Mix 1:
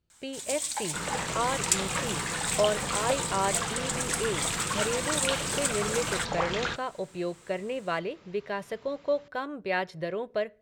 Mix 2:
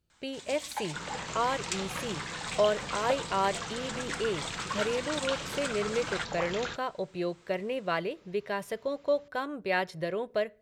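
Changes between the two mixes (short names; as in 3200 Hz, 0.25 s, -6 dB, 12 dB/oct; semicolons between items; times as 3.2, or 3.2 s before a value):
first sound: add air absorption 180 m; second sound -6.5 dB; master: add high shelf 8500 Hz +10 dB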